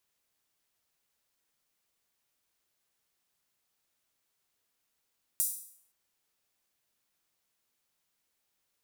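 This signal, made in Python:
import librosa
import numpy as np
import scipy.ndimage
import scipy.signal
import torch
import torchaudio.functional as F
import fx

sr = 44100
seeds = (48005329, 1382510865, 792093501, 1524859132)

y = fx.drum_hat_open(sr, length_s=0.52, from_hz=8800.0, decay_s=0.6)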